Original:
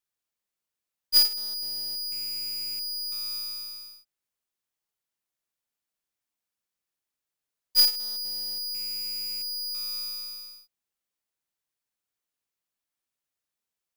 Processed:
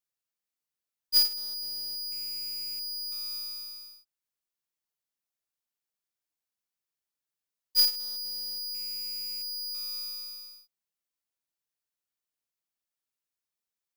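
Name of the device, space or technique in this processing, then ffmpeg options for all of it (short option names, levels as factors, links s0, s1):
presence and air boost: -af "equalizer=f=5000:t=o:w=0.77:g=2,highshelf=f=11000:g=3.5,volume=0.531"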